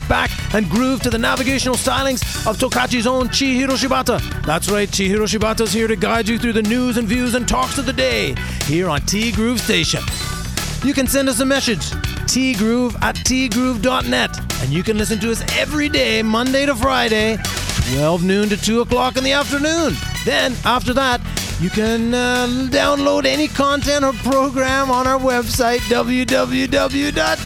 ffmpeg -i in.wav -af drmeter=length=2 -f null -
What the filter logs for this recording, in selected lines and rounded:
Channel 1: DR: 10.9
Overall DR: 10.9